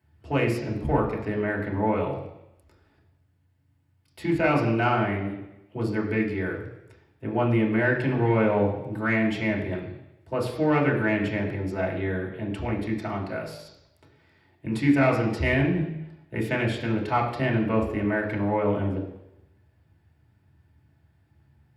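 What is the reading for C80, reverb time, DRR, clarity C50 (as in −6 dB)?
8.5 dB, 0.90 s, −3.0 dB, 6.0 dB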